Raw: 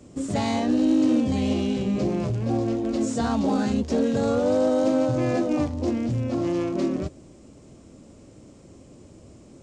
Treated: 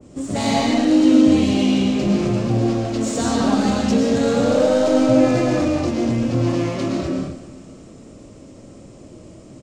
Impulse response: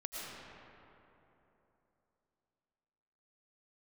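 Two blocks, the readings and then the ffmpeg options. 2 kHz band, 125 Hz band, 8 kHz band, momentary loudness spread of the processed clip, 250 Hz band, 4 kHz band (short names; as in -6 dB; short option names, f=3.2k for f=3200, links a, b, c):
+8.5 dB, +5.5 dB, +9.5 dB, 9 LU, +6.0 dB, +10.0 dB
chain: -filter_complex "[0:a]asplit=2[a][b];[b]volume=28.5dB,asoftclip=hard,volume=-28.5dB,volume=-6.5dB[c];[a][c]amix=inputs=2:normalize=0,aecho=1:1:196|392|588|784|980|1176:0.15|0.0883|0.0521|0.0307|0.0181|0.0107[d];[1:a]atrim=start_sample=2205,afade=t=out:st=0.32:d=0.01,atrim=end_sample=14553[e];[d][e]afir=irnorm=-1:irlink=0,adynamicequalizer=threshold=0.0126:dfrequency=1900:dqfactor=0.7:tfrequency=1900:tqfactor=0.7:attack=5:release=100:ratio=0.375:range=3:mode=boostabove:tftype=highshelf,volume=4dB"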